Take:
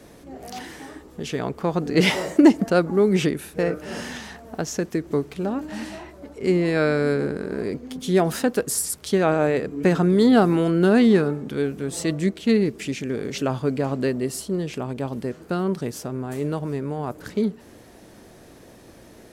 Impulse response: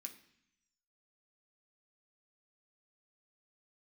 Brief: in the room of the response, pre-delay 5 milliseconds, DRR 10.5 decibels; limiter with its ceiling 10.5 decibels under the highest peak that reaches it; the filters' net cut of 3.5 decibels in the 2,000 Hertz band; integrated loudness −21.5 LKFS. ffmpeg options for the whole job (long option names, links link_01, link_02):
-filter_complex "[0:a]equalizer=frequency=2000:width_type=o:gain=-4.5,alimiter=limit=-13dB:level=0:latency=1,asplit=2[link_01][link_02];[1:a]atrim=start_sample=2205,adelay=5[link_03];[link_02][link_03]afir=irnorm=-1:irlink=0,volume=-4.5dB[link_04];[link_01][link_04]amix=inputs=2:normalize=0,volume=3dB"